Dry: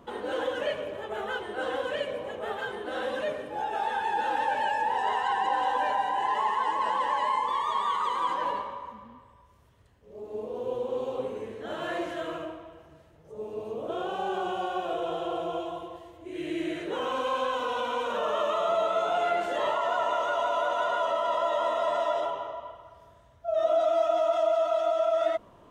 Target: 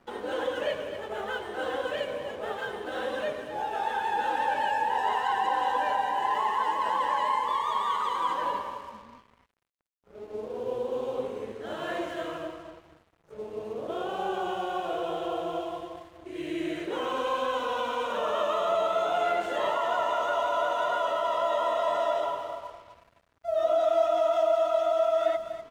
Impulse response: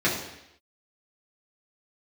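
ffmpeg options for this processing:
-af "aecho=1:1:245|490|735:0.299|0.0836|0.0234,aeval=exprs='sgn(val(0))*max(abs(val(0))-0.00224,0)':c=same"

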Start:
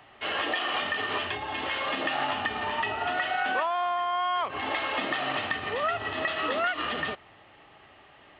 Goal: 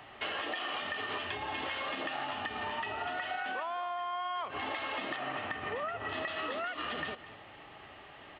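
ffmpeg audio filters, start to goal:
-filter_complex "[0:a]asettb=1/sr,asplit=3[a][b][c];[a]atrim=end=5.164[d];[b]atrim=start=5.16:end=6.09,asetpts=PTS-STARTPTS,afade=t=in:d=0.004:c=qsin,afade=t=out:st=0.926:d=0.004:c=qsin,lowpass=2.5k[e];[c]atrim=start=6.086[f];[d][e]acrossfade=d=0.004:c1=hsin:c2=qsin[g];[g][f]acrossfade=d=0.004:c1=qsin:c2=hsin,acompressor=threshold=-37dB:ratio=6,aecho=1:1:211:0.178,volume=2.5dB"

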